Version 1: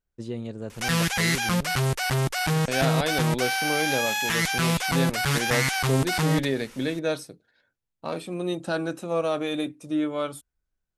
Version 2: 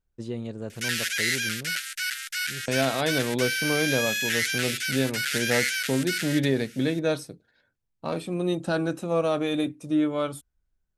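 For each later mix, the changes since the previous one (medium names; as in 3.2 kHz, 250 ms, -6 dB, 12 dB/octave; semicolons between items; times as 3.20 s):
second voice: add bass shelf 240 Hz +6.5 dB; background: add steep high-pass 1.4 kHz 96 dB/octave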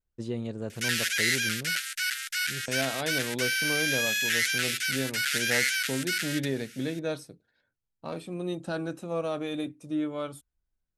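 second voice -6.5 dB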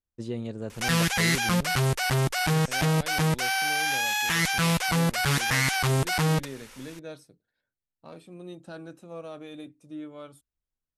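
second voice -9.0 dB; background: remove steep high-pass 1.4 kHz 96 dB/octave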